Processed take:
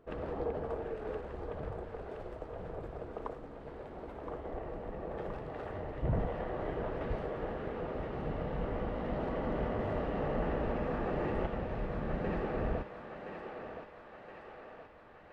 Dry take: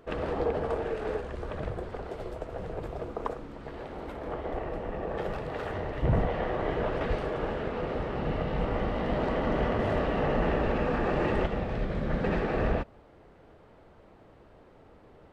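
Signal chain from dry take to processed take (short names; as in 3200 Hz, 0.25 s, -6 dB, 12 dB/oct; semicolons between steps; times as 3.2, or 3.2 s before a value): high shelf 2000 Hz -9 dB; thinning echo 1.02 s, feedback 66%, high-pass 480 Hz, level -5.5 dB; gain -6.5 dB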